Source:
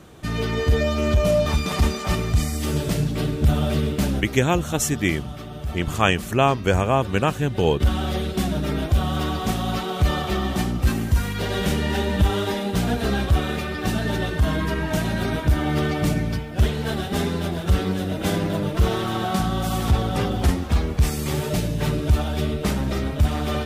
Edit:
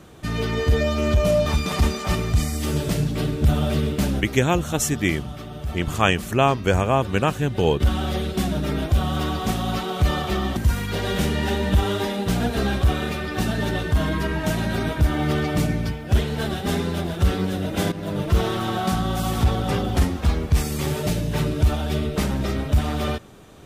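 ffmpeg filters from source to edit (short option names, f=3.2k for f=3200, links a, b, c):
-filter_complex "[0:a]asplit=3[a][b][c];[a]atrim=end=10.572[d];[b]atrim=start=11.038:end=18.39,asetpts=PTS-STARTPTS,afade=t=out:st=7.348:d=0.004:c=hsin:silence=0.223872[e];[c]atrim=start=18.39,asetpts=PTS-STARTPTS,afade=t=in:d=0.29:silence=0.223872[f];[e][f]concat=n=2:v=0:a=1[g];[d][g]acrossfade=d=0.004:c1=hsin:c2=hsin"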